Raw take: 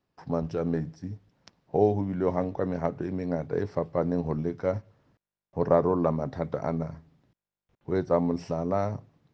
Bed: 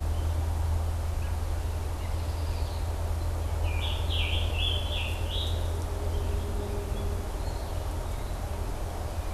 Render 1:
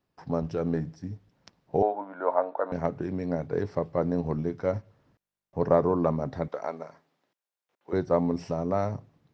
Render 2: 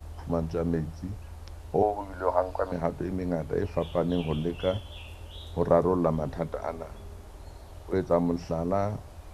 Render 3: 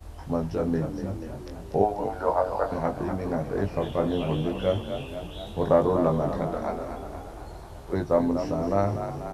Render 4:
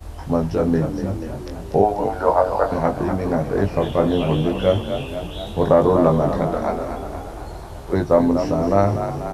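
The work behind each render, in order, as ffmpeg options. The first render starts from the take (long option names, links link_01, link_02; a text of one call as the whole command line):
ffmpeg -i in.wav -filter_complex "[0:a]asettb=1/sr,asplit=3[link_01][link_02][link_03];[link_01]atrim=end=1.824[link_04];[link_02]atrim=start=1.82:end=2.72,asetpts=PTS-STARTPTS,afade=type=in:duration=0.004:curve=qsin,afade=type=out:start_time=0.896:duration=0.004:curve=qsin,highpass=frequency=360:width=0.5412,highpass=frequency=360:width=1.3066,equalizer=frequency=380:width_type=q:width=4:gain=-10,equalizer=frequency=630:width_type=q:width=4:gain=7,equalizer=frequency=940:width_type=q:width=4:gain=8,equalizer=frequency=1400:width_type=q:width=4:gain=10,equalizer=frequency=2000:width_type=q:width=4:gain=-8,equalizer=frequency=2900:width_type=q:width=4:gain=-9,lowpass=frequency=3300:width=0.5412,lowpass=frequency=3300:width=1.3066[link_05];[link_03]atrim=start=2.716[link_06];[link_04][link_05]acrossfade=duration=0.004:curve1=hsin:curve2=qsin[link_07];[link_07][link_06]acrossfade=duration=0.004:curve1=qsin:curve2=hsin,asettb=1/sr,asplit=3[link_08][link_09][link_10];[link_08]atrim=end=6.484[link_11];[link_09]atrim=start=6.48:end=7.93,asetpts=PTS-STARTPTS,afade=type=in:duration=0.004:curve=qsin,afade=type=out:start_time=1.446:duration=0.004:curve=qsin,highpass=500[link_12];[link_10]atrim=start=7.926[link_13];[link_11][link_12]acrossfade=duration=0.004:curve1=hsin:curve2=qsin[link_14];[link_14][link_13]acrossfade=duration=0.004:curve1=qsin:curve2=hsin" out.wav
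ffmpeg -i in.wav -i bed.wav -filter_complex "[1:a]volume=-12.5dB[link_01];[0:a][link_01]amix=inputs=2:normalize=0" out.wav
ffmpeg -i in.wav -filter_complex "[0:a]asplit=2[link_01][link_02];[link_02]adelay=20,volume=-4dB[link_03];[link_01][link_03]amix=inputs=2:normalize=0,asplit=9[link_04][link_05][link_06][link_07][link_08][link_09][link_10][link_11][link_12];[link_05]adelay=243,afreqshift=36,volume=-9dB[link_13];[link_06]adelay=486,afreqshift=72,volume=-13dB[link_14];[link_07]adelay=729,afreqshift=108,volume=-17dB[link_15];[link_08]adelay=972,afreqshift=144,volume=-21dB[link_16];[link_09]adelay=1215,afreqshift=180,volume=-25.1dB[link_17];[link_10]adelay=1458,afreqshift=216,volume=-29.1dB[link_18];[link_11]adelay=1701,afreqshift=252,volume=-33.1dB[link_19];[link_12]adelay=1944,afreqshift=288,volume=-37.1dB[link_20];[link_04][link_13][link_14][link_15][link_16][link_17][link_18][link_19][link_20]amix=inputs=9:normalize=0" out.wav
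ffmpeg -i in.wav -af "volume=7.5dB,alimiter=limit=-2dB:level=0:latency=1" out.wav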